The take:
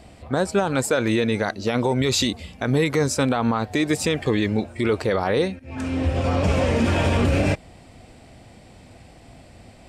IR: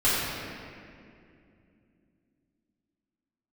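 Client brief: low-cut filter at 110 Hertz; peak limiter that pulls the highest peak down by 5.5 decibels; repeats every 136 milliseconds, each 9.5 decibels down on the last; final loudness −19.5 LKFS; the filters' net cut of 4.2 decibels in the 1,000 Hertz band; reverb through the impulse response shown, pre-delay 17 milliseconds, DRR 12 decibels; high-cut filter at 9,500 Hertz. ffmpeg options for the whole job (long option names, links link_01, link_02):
-filter_complex "[0:a]highpass=110,lowpass=9500,equalizer=frequency=1000:width_type=o:gain=-6,alimiter=limit=-15dB:level=0:latency=1,aecho=1:1:136|272|408|544:0.335|0.111|0.0365|0.012,asplit=2[link_01][link_02];[1:a]atrim=start_sample=2205,adelay=17[link_03];[link_02][link_03]afir=irnorm=-1:irlink=0,volume=-28dB[link_04];[link_01][link_04]amix=inputs=2:normalize=0,volume=5.5dB"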